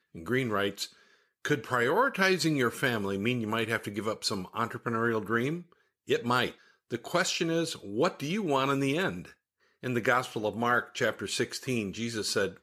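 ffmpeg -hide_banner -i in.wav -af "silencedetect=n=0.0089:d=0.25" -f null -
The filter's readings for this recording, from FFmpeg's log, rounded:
silence_start: 0.86
silence_end: 1.45 | silence_duration: 0.59
silence_start: 5.62
silence_end: 6.09 | silence_duration: 0.47
silence_start: 6.51
silence_end: 6.91 | silence_duration: 0.39
silence_start: 9.29
silence_end: 9.83 | silence_duration: 0.54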